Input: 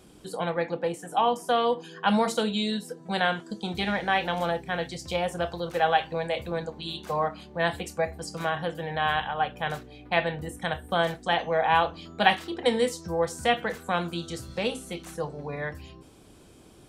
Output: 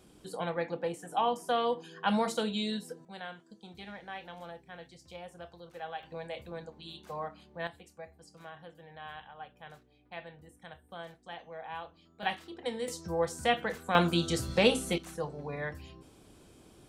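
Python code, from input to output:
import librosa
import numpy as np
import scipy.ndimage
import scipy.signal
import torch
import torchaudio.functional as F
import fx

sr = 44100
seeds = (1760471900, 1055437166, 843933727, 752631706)

y = fx.gain(x, sr, db=fx.steps((0.0, -5.5), (3.05, -18.0), (6.03, -11.5), (7.67, -19.5), (12.23, -12.0), (12.88, -4.0), (13.95, 4.5), (14.98, -4.0)))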